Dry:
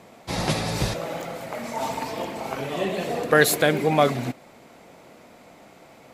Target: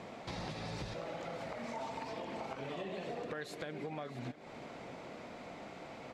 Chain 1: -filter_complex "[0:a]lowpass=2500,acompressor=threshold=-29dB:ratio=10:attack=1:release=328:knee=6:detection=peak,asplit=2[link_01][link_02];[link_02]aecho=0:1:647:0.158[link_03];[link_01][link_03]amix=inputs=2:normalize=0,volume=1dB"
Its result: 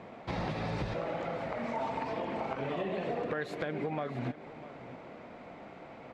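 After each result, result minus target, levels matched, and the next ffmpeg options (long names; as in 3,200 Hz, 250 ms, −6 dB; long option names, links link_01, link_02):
downward compressor: peak gain reduction −7.5 dB; 4,000 Hz band −7.0 dB
-filter_complex "[0:a]lowpass=2500,acompressor=threshold=-37dB:ratio=10:attack=1:release=328:knee=6:detection=peak,asplit=2[link_01][link_02];[link_02]aecho=0:1:647:0.158[link_03];[link_01][link_03]amix=inputs=2:normalize=0,volume=1dB"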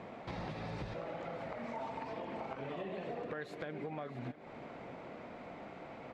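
4,000 Hz band −6.0 dB
-filter_complex "[0:a]lowpass=5200,acompressor=threshold=-37dB:ratio=10:attack=1:release=328:knee=6:detection=peak,asplit=2[link_01][link_02];[link_02]aecho=0:1:647:0.158[link_03];[link_01][link_03]amix=inputs=2:normalize=0,volume=1dB"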